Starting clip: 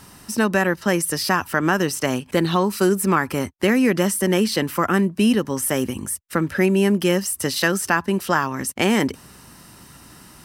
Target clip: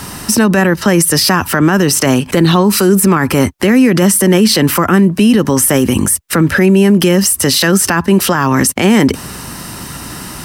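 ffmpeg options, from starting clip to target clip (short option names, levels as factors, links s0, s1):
-filter_complex "[0:a]acrossover=split=300[s0][s1];[s1]acompressor=threshold=0.0631:ratio=2.5[s2];[s0][s2]amix=inputs=2:normalize=0,alimiter=level_in=9.44:limit=0.891:release=50:level=0:latency=1,volume=0.891"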